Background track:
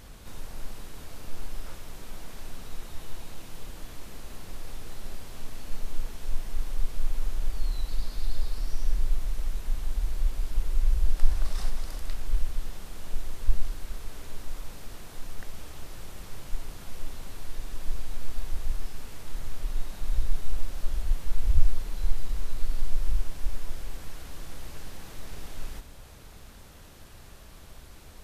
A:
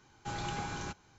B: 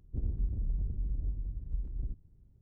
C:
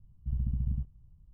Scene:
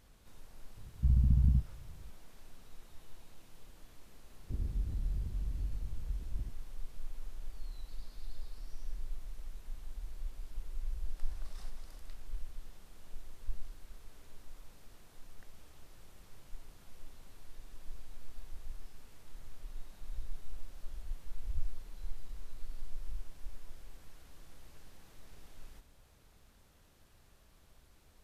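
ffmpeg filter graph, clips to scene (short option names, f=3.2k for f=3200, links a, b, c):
-filter_complex "[0:a]volume=-15dB[a];[3:a]alimiter=level_in=23.5dB:limit=-1dB:release=50:level=0:latency=1,atrim=end=1.33,asetpts=PTS-STARTPTS,volume=-17dB,afade=t=in:d=0.004:c=hsin,afade=t=out:st=1.326:d=0.004:c=hsin,adelay=770[b];[2:a]atrim=end=2.61,asetpts=PTS-STARTPTS,volume=-3dB,afade=t=in:d=0.004:c=hsin,afade=t=out:st=2.606:d=0.004:c=hsin,adelay=4360[c];[a][b][c]amix=inputs=3:normalize=0"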